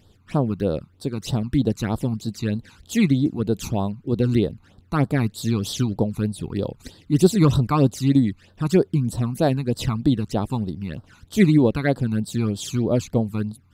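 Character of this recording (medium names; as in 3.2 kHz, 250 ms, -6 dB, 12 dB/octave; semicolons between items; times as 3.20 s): phasing stages 12, 3.2 Hz, lowest notch 530–2300 Hz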